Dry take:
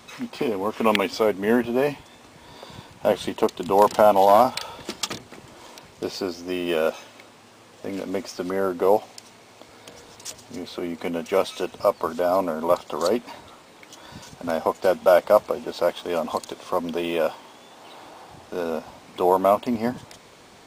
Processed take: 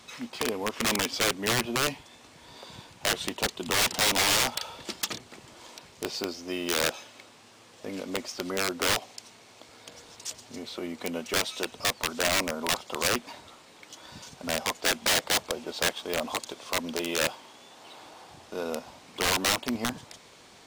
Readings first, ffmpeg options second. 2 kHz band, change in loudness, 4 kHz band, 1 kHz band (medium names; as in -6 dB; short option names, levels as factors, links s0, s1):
+4.0 dB, -5.0 dB, +7.0 dB, -10.0 dB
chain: -af "aeval=exprs='(mod(5.62*val(0)+1,2)-1)/5.62':c=same,equalizer=f=5200:w=0.4:g=5.5,volume=0.501"